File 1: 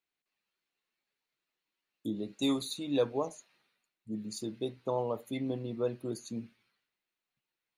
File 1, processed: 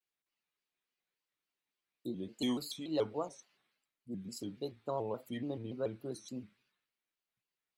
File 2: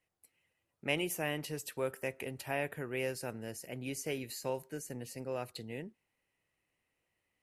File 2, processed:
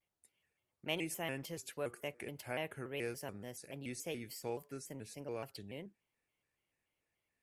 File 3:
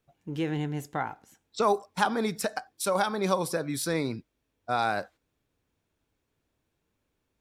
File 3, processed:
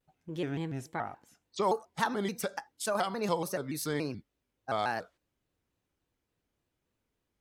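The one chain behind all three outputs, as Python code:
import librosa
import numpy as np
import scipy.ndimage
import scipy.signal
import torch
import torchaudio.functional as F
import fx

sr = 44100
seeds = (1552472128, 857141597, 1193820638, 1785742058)

y = fx.vibrato_shape(x, sr, shape='square', rate_hz=3.5, depth_cents=160.0)
y = y * 10.0 ** (-4.5 / 20.0)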